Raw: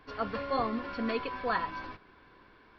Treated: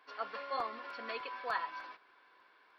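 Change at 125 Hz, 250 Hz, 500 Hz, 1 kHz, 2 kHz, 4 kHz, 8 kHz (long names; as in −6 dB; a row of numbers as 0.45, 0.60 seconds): below −20 dB, −21.0 dB, −9.5 dB, −5.0 dB, −4.0 dB, −4.0 dB, can't be measured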